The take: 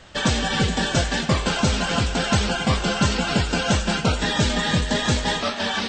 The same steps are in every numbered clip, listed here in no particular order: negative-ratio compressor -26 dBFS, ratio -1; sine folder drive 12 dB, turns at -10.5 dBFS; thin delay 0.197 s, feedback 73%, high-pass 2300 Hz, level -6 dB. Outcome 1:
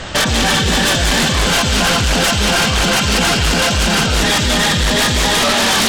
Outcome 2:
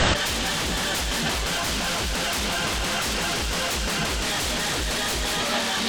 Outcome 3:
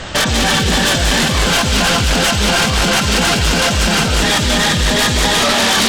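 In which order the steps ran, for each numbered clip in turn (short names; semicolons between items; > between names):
negative-ratio compressor > thin delay > sine folder; sine folder > negative-ratio compressor > thin delay; negative-ratio compressor > sine folder > thin delay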